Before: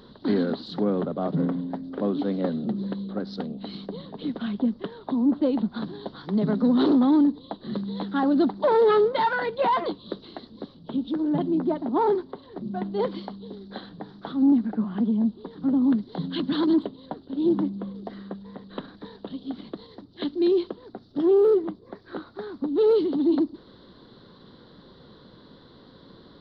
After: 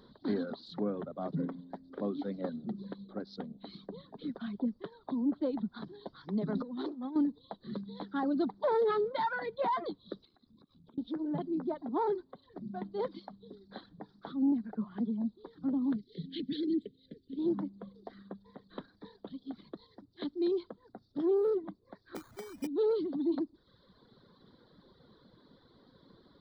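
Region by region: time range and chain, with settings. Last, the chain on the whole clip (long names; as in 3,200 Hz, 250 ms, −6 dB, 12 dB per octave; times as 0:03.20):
0:06.55–0:07.16: mains-hum notches 50/100/150/200 Hz + compressor whose output falls as the input rises −24 dBFS, ratio −0.5
0:10.25–0:10.98: comb filter 0.8 ms, depth 38% + downward compressor 10 to 1, threshold −44 dBFS + amplitude modulation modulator 74 Hz, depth 45%
0:15.96–0:17.39: elliptic band-stop filter 450–2,000 Hz, stop band 50 dB + parametric band 2,900 Hz +5.5 dB 0.47 octaves
0:22.15–0:22.67: linear delta modulator 32 kbit/s, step −38 dBFS + low-pass filter 4,200 Hz + sample-rate reduction 2,700 Hz
whole clip: reverb reduction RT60 1 s; parametric band 2,800 Hz −12 dB 0.22 octaves; level −8.5 dB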